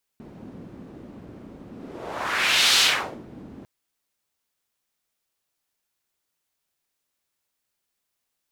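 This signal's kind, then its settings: whoosh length 3.45 s, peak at 2.59, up 1.17 s, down 0.47 s, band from 240 Hz, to 3900 Hz, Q 1.6, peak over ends 25 dB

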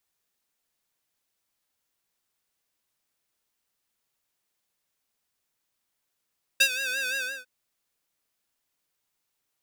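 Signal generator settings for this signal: synth patch with vibrato C5, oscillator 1 square, oscillator 2 sine, interval -12 st, oscillator 2 level -1 dB, sub -22 dB, filter highpass, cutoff 1300 Hz, Q 1.7, filter envelope 1 oct, filter sustain 50%, attack 11 ms, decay 0.07 s, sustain -14 dB, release 0.28 s, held 0.57 s, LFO 5.8 Hz, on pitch 79 cents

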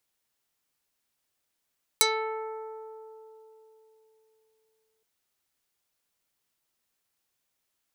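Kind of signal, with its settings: plucked string A4, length 3.02 s, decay 3.73 s, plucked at 0.26, dark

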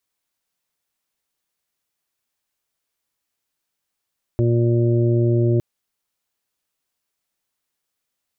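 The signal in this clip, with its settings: steady additive tone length 1.21 s, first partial 118 Hz, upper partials -10.5/-3.5/-20/-13.5 dB, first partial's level -16 dB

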